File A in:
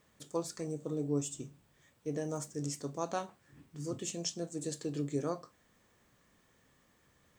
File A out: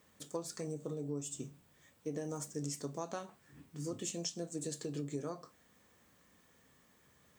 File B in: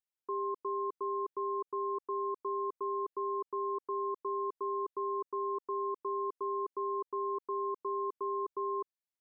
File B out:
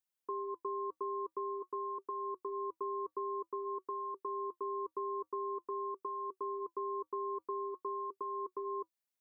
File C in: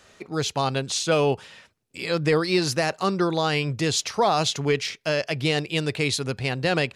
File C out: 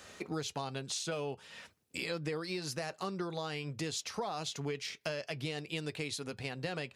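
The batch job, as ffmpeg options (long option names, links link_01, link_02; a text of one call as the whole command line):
ffmpeg -i in.wav -af "highpass=56,highshelf=frequency=10000:gain=5.5,acompressor=threshold=-36dB:ratio=8,flanger=delay=3.8:depth=1:regen=-71:speed=0.49:shape=sinusoidal,volume=5dB" out.wav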